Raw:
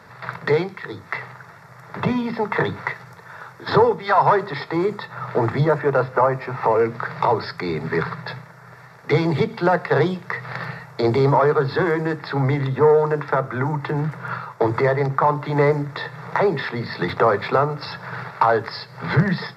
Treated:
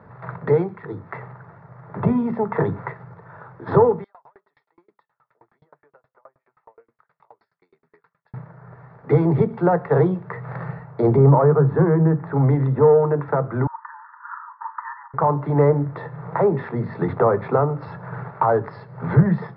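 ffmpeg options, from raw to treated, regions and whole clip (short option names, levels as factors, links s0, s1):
-filter_complex "[0:a]asettb=1/sr,asplit=3[s0][s1][s2];[s0]atrim=end=4.044[s3];[s1]atrim=start=4.04:end=8.34,asetpts=PTS-STARTPTS,afade=t=in:d=0.004:c=qsin,afade=t=out:st=4.296:d=0.004:c=qsin,aderivative,flanger=delay=0.9:depth=6.4:regen=86:speed=1.4:shape=sinusoidal,aeval=exprs='val(0)*pow(10,-37*if(lt(mod(9.5*n/s,1),2*abs(9.5)/1000),1-mod(9.5*n/s,1)/(2*abs(9.5)/1000),(mod(9.5*n/s,1)-2*abs(9.5)/1000)/(1-2*abs(9.5)/1000))/20)':c=same[s4];[s2]atrim=start=8.336[s5];[s3][s4]acrossfade=d=0.004:c1=hsin:c2=qsin[s6];[s6][s5]acrossfade=d=0.004:c1=qsin:c2=hsin,asettb=1/sr,asplit=3[s7][s8][s9];[s7]atrim=end=11.164[s10];[s8]atrim=start=11.16:end=12.34,asetpts=PTS-STARTPTS,afade=t=in:d=0.004:c=qsin,afade=t=out:st=1.176:d=0.004:c=qsin,lowpass=2000,equalizer=f=160:w=3.5:g=8.5[s11];[s9]atrim=start=12.336[s12];[s10][s11]acrossfade=d=0.004:c1=hsin:c2=qsin[s13];[s13][s12]acrossfade=d=0.004:c1=qsin:c2=hsin,asettb=1/sr,asplit=3[s14][s15][s16];[s14]atrim=end=13.674[s17];[s15]atrim=start=13.67:end=15.14,asetpts=PTS-STARTPTS,afade=t=in:d=0.004:c=qsin,afade=t=out:st=1.466:d=0.004:c=qsin,asuperpass=centerf=1300:order=20:qfactor=1.3,asplit=2[s18][s19];[s19]adelay=38,volume=0.211[s20];[s18][s20]amix=inputs=2:normalize=0,atrim=end_sample=64827[s21];[s16]atrim=start=15.136[s22];[s17][s21]acrossfade=d=0.004:c1=hsin:c2=qsin[s23];[s23][s22]acrossfade=d=0.004:c1=qsin:c2=hsin,lowpass=1100,lowshelf=f=360:g=5,volume=0.891"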